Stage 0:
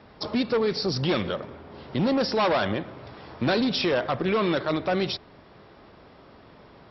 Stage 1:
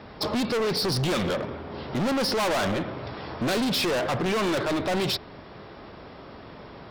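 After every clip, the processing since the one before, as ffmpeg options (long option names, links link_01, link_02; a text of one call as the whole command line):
ffmpeg -i in.wav -af "asoftclip=type=hard:threshold=-30.5dB,volume=7dB" out.wav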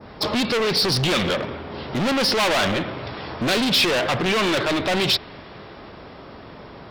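ffmpeg -i in.wav -af "adynamicequalizer=threshold=0.00794:dfrequency=3000:dqfactor=0.73:tfrequency=3000:tqfactor=0.73:attack=5:release=100:ratio=0.375:range=3.5:mode=boostabove:tftype=bell,volume=3dB" out.wav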